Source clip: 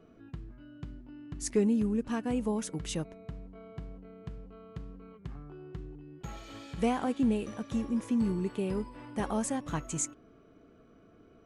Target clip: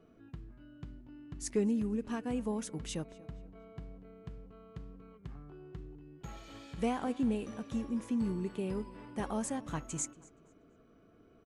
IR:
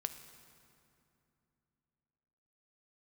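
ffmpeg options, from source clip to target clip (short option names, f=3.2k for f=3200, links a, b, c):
-filter_complex "[0:a]asplit=2[a][b];[b]adelay=237,lowpass=f=4.3k:p=1,volume=-20dB,asplit=2[c][d];[d]adelay=237,lowpass=f=4.3k:p=1,volume=0.4,asplit=2[e][f];[f]adelay=237,lowpass=f=4.3k:p=1,volume=0.4[g];[a][c][e][g]amix=inputs=4:normalize=0,volume=-4dB"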